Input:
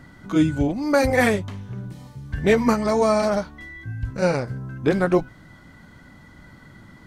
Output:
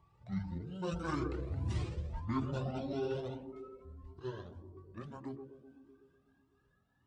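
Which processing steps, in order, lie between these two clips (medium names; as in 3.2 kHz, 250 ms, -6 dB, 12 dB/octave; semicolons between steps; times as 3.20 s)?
pitch bend over the whole clip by -11.5 st ending unshifted; Doppler pass-by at 1.77 s, 39 m/s, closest 2.9 m; high-pass 54 Hz; band-stop 6.4 kHz, Q 19; band-passed feedback delay 125 ms, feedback 73%, band-pass 340 Hz, level -7 dB; reverse; compression 5:1, threshold -40 dBFS, peak gain reduction 9 dB; reverse; de-hum 68.61 Hz, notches 8; Shepard-style flanger rising 1.7 Hz; trim +13 dB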